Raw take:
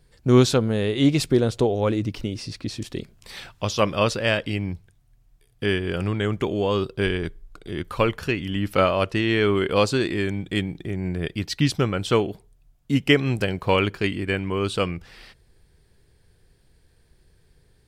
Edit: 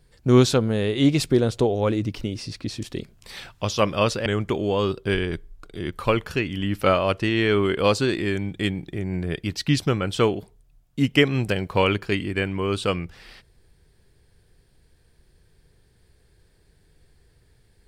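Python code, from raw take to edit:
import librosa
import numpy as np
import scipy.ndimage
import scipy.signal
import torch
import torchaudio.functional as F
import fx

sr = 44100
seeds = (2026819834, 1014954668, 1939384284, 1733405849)

y = fx.edit(x, sr, fx.cut(start_s=4.26, length_s=1.92), tone=tone)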